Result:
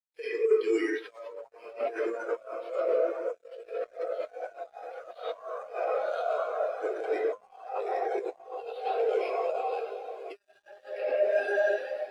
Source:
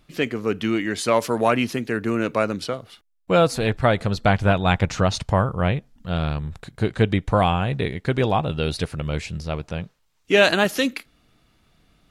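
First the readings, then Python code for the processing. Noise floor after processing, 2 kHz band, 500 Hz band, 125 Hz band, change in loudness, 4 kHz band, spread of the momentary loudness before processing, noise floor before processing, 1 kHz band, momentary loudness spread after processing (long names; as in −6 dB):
−63 dBFS, −12.0 dB, −5.0 dB, below −40 dB, −9.0 dB, −21.5 dB, 10 LU, −64 dBFS, −10.0 dB, 16 LU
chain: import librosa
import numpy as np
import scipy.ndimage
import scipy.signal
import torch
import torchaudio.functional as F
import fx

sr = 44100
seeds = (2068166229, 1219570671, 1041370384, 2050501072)

y = 10.0 ** (-18.5 / 20.0) * np.tanh(x / 10.0 ** (-18.5 / 20.0))
y = fx.echo_diffused(y, sr, ms=1050, feedback_pct=55, wet_db=-7.5)
y = fx.sample_hold(y, sr, seeds[0], rate_hz=7500.0, jitter_pct=0)
y = scipy.signal.sosfilt(scipy.signal.butter(4, 480.0, 'highpass', fs=sr, output='sos'), y)
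y = fx.peak_eq(y, sr, hz=810.0, db=-3.5, octaves=1.8)
y = fx.room_shoebox(y, sr, seeds[1], volume_m3=200.0, walls='hard', distance_m=0.65)
y = fx.over_compress(y, sr, threshold_db=-30.0, ratio=-0.5)
y = scipy.signal.sosfilt(scipy.signal.butter(4, 11000.0, 'lowpass', fs=sr, output='sos'), y)
y = fx.quant_dither(y, sr, seeds[2], bits=6, dither='none')
y = fx.spectral_expand(y, sr, expansion=2.5)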